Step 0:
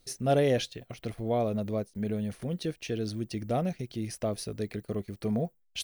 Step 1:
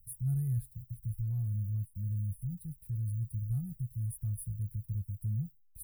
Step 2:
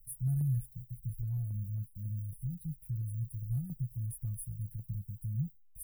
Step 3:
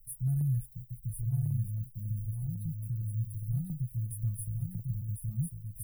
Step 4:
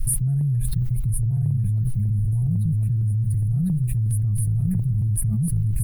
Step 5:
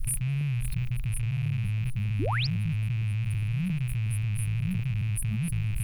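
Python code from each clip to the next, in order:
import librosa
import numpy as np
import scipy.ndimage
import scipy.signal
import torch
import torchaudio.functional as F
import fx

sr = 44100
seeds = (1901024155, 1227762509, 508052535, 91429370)

y1 = scipy.signal.sosfilt(scipy.signal.cheby2(4, 40, [250.0, 6400.0], 'bandstop', fs=sr, output='sos'), x)
y1 = fx.peak_eq(y1, sr, hz=5800.0, db=-7.0, octaves=0.67)
y1 = F.gain(torch.from_numpy(y1), 6.0).numpy()
y2 = y1 + 0.65 * np.pad(y1, (int(6.0 * sr / 1000.0), 0))[:len(y1)]
y2 = fx.phaser_held(y2, sr, hz=7.3, low_hz=880.0, high_hz=2200.0)
y3 = y2 + 10.0 ** (-4.0 / 20.0) * np.pad(y2, (int(1049 * sr / 1000.0), 0))[:len(y2)]
y3 = F.gain(torch.from_numpy(y3), 1.5).numpy()
y4 = fx.air_absorb(y3, sr, metres=66.0)
y4 = fx.env_flatten(y4, sr, amount_pct=100)
y4 = F.gain(torch.from_numpy(y4), 6.0).numpy()
y5 = fx.rattle_buzz(y4, sr, strikes_db=-25.0, level_db=-26.0)
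y5 = fx.spec_paint(y5, sr, seeds[0], shape='rise', start_s=2.19, length_s=0.28, low_hz=230.0, high_hz=5700.0, level_db=-24.0)
y5 = F.gain(torch.from_numpy(y5), -7.0).numpy()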